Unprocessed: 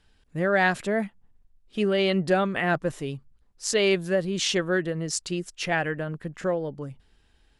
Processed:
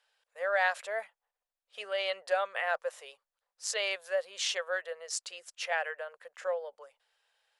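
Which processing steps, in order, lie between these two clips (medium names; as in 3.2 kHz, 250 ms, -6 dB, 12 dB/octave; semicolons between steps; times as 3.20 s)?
elliptic high-pass 510 Hz, stop band 40 dB; trim -5 dB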